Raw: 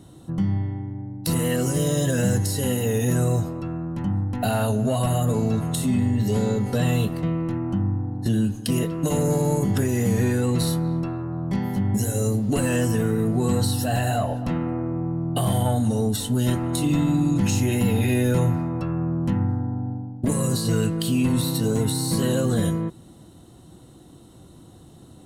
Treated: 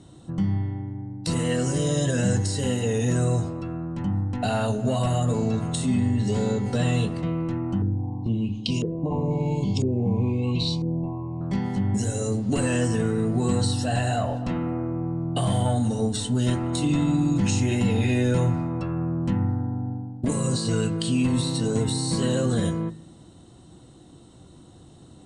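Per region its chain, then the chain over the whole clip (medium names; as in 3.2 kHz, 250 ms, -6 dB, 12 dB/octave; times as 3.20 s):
7.82–11.41 s: Chebyshev band-stop 1.1–2.2 kHz, order 5 + dynamic bell 650 Hz, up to -6 dB, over -38 dBFS, Q 0.74 + LFO low-pass saw up 1 Hz 420–6000 Hz
whole clip: elliptic low-pass 8.8 kHz, stop band 50 dB; de-hum 53.69 Hz, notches 37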